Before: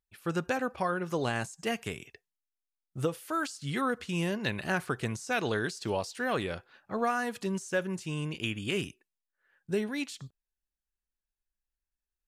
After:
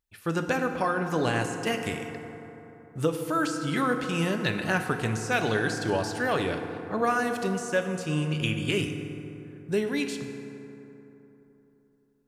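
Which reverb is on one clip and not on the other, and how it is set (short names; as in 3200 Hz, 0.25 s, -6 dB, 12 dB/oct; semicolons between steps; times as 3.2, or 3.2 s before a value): FDN reverb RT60 3.5 s, high-frequency decay 0.4×, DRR 5 dB; gain +3.5 dB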